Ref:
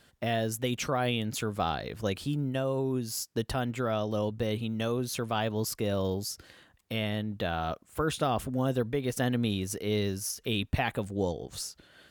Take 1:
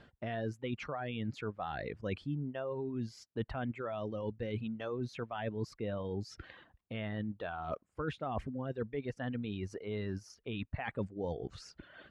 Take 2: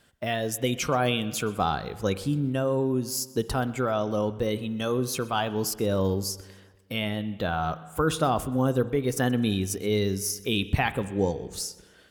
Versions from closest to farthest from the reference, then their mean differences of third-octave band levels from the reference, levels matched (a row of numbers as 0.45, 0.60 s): 2, 1; 3.5, 7.5 dB